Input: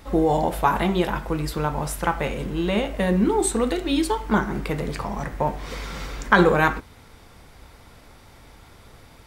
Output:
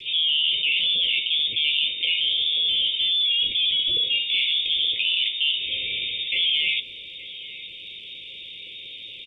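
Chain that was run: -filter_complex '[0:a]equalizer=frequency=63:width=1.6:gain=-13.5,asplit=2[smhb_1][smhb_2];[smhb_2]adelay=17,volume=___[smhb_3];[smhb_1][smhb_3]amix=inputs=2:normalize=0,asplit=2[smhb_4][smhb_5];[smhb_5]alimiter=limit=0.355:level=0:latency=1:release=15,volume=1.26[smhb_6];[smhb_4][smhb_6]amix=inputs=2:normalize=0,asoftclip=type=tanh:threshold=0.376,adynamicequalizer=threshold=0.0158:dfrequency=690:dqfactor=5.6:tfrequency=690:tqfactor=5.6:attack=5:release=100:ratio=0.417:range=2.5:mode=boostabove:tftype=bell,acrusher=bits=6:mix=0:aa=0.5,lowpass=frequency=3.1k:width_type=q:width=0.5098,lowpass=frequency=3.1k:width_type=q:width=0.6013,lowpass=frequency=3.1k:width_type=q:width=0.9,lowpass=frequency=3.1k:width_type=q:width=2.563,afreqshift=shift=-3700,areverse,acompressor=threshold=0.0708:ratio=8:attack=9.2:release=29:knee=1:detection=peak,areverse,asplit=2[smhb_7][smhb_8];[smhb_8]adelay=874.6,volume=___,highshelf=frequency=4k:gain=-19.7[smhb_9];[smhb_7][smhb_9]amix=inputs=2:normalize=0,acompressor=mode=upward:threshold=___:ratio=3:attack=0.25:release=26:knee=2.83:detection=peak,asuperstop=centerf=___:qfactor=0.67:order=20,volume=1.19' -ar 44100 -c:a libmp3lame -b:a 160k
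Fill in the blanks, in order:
0.282, 0.251, 0.0251, 1100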